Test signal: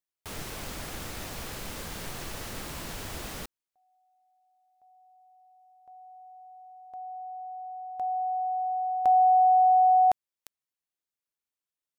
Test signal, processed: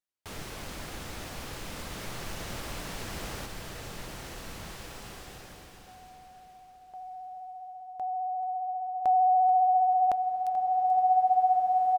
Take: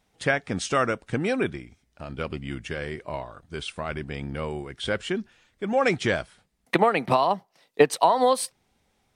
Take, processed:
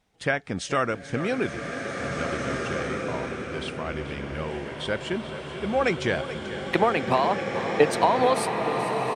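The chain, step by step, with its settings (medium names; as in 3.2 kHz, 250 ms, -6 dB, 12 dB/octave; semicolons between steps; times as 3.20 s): treble shelf 9.6 kHz -7 dB; vibrato 15 Hz 18 cents; feedback delay 435 ms, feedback 51%, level -13.5 dB; swelling reverb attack 1970 ms, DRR 1.5 dB; trim -1.5 dB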